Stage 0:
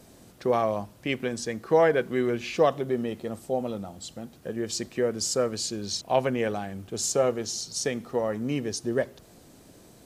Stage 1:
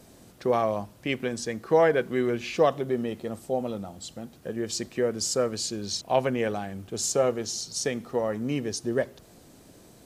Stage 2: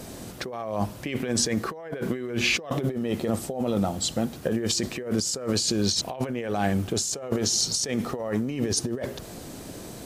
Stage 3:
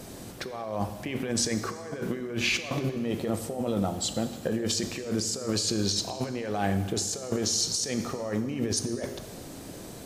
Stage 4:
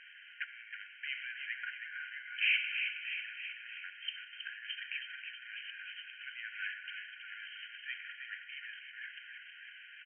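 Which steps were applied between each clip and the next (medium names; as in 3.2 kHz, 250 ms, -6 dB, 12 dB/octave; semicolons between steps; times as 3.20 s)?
no audible change
compressor with a negative ratio -35 dBFS, ratio -1; trim +6.5 dB
plate-style reverb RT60 1.6 s, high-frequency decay 0.95×, DRR 9 dB; trim -3 dB
saturation -26 dBFS, distortion -12 dB; brick-wall FIR band-pass 1.4–3.2 kHz; feedback delay 320 ms, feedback 60%, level -7 dB; trim +3.5 dB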